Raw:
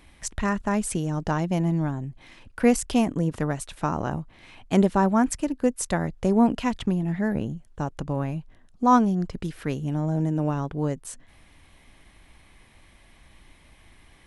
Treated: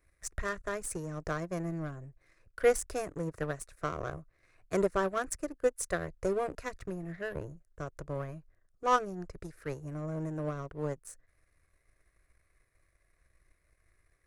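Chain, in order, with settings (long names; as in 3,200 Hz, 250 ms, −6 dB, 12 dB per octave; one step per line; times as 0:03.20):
phaser with its sweep stopped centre 860 Hz, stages 6
power curve on the samples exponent 1.4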